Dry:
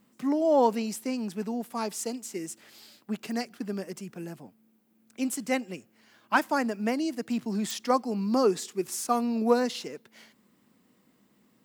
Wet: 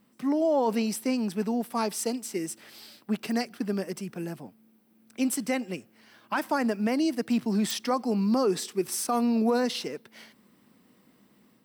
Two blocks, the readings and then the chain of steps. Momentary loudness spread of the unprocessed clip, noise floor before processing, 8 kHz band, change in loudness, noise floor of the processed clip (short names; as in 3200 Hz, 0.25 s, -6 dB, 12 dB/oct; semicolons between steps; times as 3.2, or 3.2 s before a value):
15 LU, -66 dBFS, +2.0 dB, +0.5 dB, -63 dBFS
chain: notch 6900 Hz, Q 6.3; AGC gain up to 4 dB; limiter -17 dBFS, peak gain reduction 11 dB